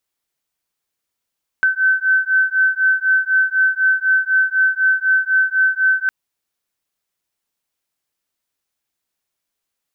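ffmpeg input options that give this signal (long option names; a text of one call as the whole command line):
ffmpeg -f lavfi -i "aevalsrc='0.158*(sin(2*PI*1530*t)+sin(2*PI*1534*t))':duration=4.46:sample_rate=44100" out.wav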